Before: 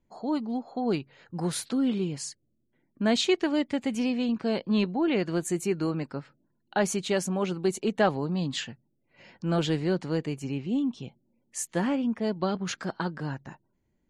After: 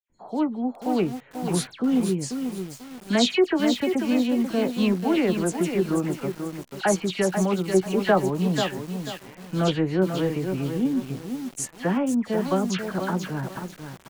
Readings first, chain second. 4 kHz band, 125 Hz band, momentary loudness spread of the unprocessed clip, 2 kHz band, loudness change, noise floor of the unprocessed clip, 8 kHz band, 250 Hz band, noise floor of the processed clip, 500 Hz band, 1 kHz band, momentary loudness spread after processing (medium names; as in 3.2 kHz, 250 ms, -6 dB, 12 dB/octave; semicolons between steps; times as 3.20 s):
+3.5 dB, +4.5 dB, 10 LU, +4.0 dB, +4.0 dB, -74 dBFS, +3.0 dB, +4.5 dB, -49 dBFS, +5.0 dB, +4.5 dB, 11 LU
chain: local Wiener filter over 9 samples; doubling 16 ms -12.5 dB; phase dispersion lows, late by 97 ms, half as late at 2.8 kHz; bit-crushed delay 489 ms, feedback 35%, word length 7-bit, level -6.5 dB; trim +3.5 dB